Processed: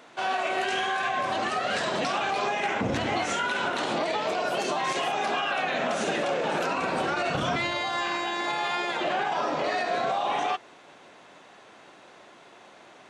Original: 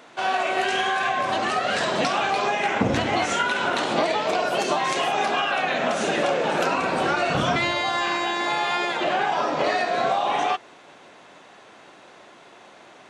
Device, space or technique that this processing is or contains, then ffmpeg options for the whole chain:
clipper into limiter: -af "asoftclip=type=hard:threshold=-10dB,alimiter=limit=-15.5dB:level=0:latency=1:release=29,volume=-3dB"

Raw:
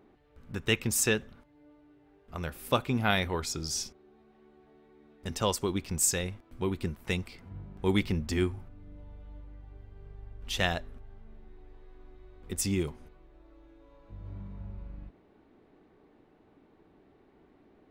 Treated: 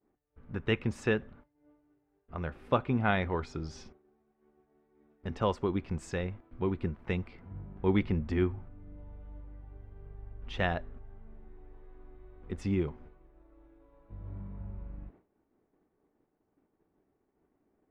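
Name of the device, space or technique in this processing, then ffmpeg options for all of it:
hearing-loss simulation: -af "lowpass=1.9k,agate=range=-33dB:threshold=-51dB:ratio=3:detection=peak"

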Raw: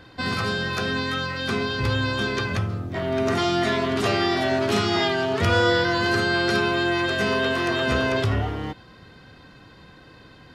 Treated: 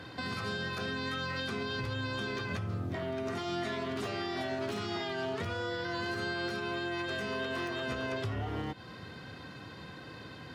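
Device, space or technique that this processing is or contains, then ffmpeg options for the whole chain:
podcast mastering chain: -af "highpass=f=75:w=0.5412,highpass=f=75:w=1.3066,deesser=0.65,acompressor=threshold=-34dB:ratio=4,alimiter=level_in=4dB:limit=-24dB:level=0:latency=1:release=131,volume=-4dB,volume=2dB" -ar 44100 -c:a libmp3lame -b:a 96k

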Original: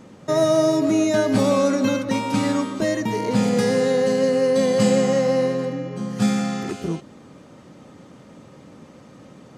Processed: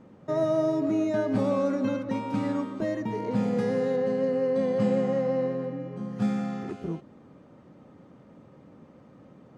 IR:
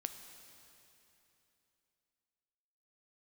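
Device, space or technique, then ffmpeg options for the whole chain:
through cloth: -filter_complex "[0:a]asettb=1/sr,asplit=3[a][b][c];[a]atrim=end=3.964[d];[b]atrim=start=3.96:end=5.8,asetpts=PTS-STARTPTS,afade=t=in:d=0.004:c=qsin,afade=t=out:st=1.836:d=0.004:c=qsin,highshelf=f=6k:g=-8.5[e];[c]atrim=start=5.796[f];[d][e]acrossfade=d=0.004:c1=hsin:c2=qsin[g];[g][f]acrossfade=d=0.004:c1=qsin:c2=hsin,highshelf=f=3.2k:g=-18,volume=-6.5dB"

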